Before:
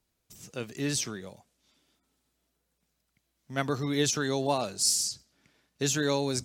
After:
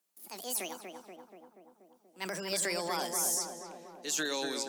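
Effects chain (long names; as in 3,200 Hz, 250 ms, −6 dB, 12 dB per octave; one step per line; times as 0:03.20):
gliding playback speed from 183% → 92%
Butterworth high-pass 170 Hz 72 dB per octave
spectral tilt +2.5 dB per octave
transient designer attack −4 dB, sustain +7 dB
brickwall limiter −15.5 dBFS, peak gain reduction 8 dB
feedback echo with a low-pass in the loop 240 ms, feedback 70%, low-pass 1,700 Hz, level −4.5 dB
level −6.5 dB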